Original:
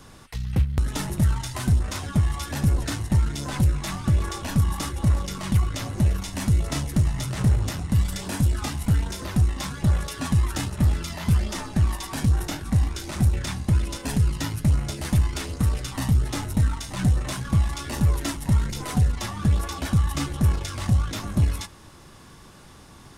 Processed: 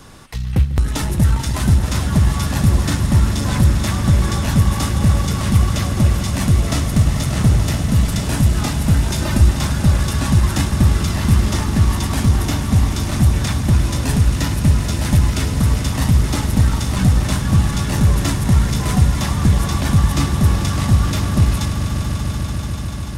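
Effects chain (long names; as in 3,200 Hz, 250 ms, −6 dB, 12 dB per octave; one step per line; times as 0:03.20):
0:09.10–0:09.51: comb filter 3.3 ms, depth 96%
echo that builds up and dies away 146 ms, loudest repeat 5, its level −11.5 dB
level +6 dB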